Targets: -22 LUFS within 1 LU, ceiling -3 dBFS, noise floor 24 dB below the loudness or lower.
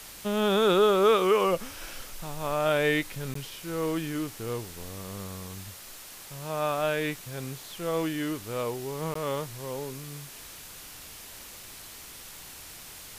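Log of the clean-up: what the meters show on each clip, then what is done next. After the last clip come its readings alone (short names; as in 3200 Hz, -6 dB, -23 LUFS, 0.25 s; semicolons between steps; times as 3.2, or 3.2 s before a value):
dropouts 2; longest dropout 14 ms; noise floor -45 dBFS; noise floor target -53 dBFS; loudness -28.5 LUFS; peak -11.0 dBFS; loudness target -22.0 LUFS
-> interpolate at 3.34/9.14, 14 ms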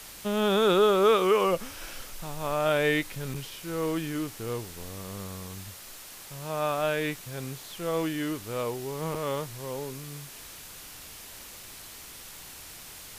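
dropouts 0; noise floor -45 dBFS; noise floor target -53 dBFS
-> denoiser 8 dB, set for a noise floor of -45 dBFS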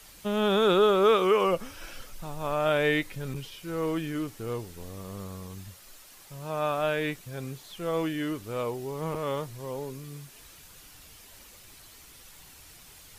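noise floor -52 dBFS; loudness -28.0 LUFS; peak -11.0 dBFS; loudness target -22.0 LUFS
-> gain +6 dB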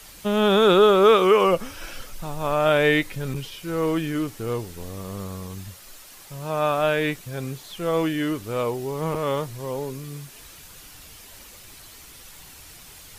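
loudness -22.0 LUFS; peak -5.0 dBFS; noise floor -46 dBFS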